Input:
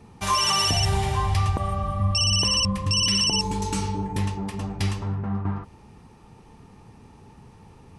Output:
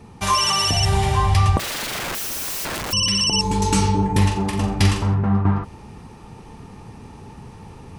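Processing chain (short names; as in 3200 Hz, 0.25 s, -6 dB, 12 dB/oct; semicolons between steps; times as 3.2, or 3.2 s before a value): vocal rider within 4 dB 0.5 s; 1.59–2.93 wrapped overs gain 27.5 dB; 4.17–5.14 flutter echo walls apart 7.5 m, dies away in 0.37 s; gain +5 dB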